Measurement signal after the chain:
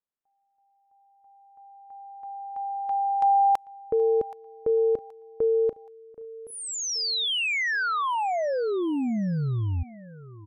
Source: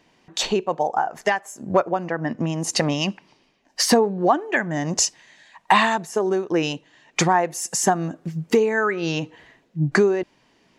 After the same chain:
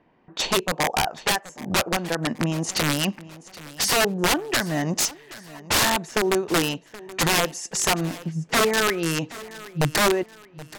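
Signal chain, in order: wrapped overs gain 14 dB; low-pass opened by the level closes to 1500 Hz, open at -19 dBFS; feedback echo 0.775 s, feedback 38%, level -18.5 dB

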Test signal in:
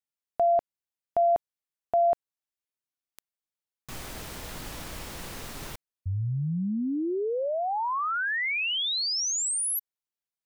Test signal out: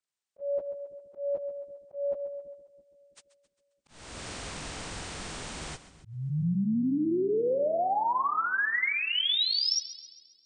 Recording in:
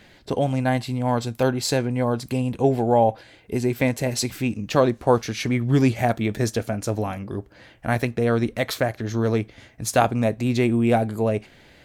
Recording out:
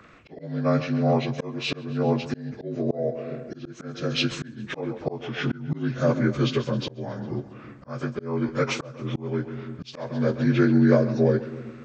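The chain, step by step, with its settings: inharmonic rescaling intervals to 81%; split-band echo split 340 Hz, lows 0.332 s, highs 0.134 s, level -15 dB; auto swell 0.398 s; gain +2 dB

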